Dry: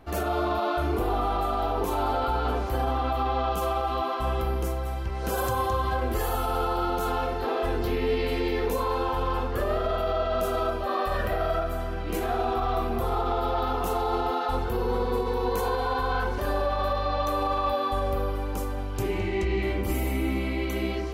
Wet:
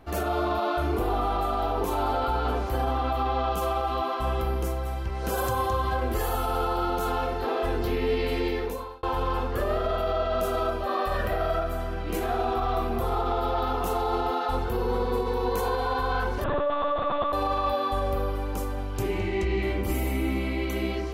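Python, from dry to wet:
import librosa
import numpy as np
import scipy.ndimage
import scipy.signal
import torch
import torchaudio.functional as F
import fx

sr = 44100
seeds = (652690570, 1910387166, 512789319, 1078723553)

y = fx.lpc_monotone(x, sr, seeds[0], pitch_hz=290.0, order=10, at=(16.44, 17.33))
y = fx.edit(y, sr, fx.fade_out_span(start_s=8.46, length_s=0.57), tone=tone)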